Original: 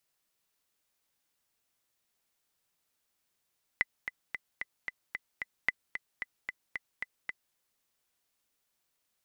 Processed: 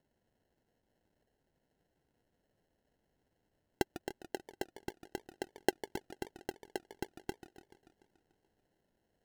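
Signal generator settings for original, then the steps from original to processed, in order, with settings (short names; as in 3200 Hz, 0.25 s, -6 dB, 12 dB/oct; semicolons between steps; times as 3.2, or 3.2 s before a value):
metronome 224 bpm, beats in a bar 7, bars 2, 2010 Hz, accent 9.5 dB -12.5 dBFS
tape echo 0.268 s, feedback 53%, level -21 dB, low-pass 1100 Hz; sample-and-hold 37×; warbling echo 0.145 s, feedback 64%, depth 212 cents, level -14 dB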